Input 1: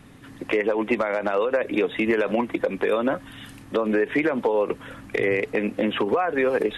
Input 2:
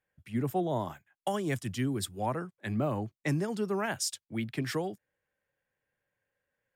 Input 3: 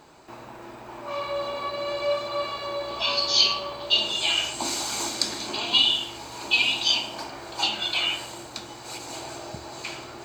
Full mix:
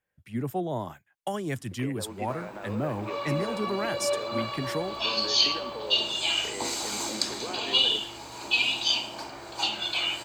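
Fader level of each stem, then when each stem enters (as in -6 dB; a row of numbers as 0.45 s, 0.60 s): -17.0 dB, 0.0 dB, -3.0 dB; 1.30 s, 0.00 s, 2.00 s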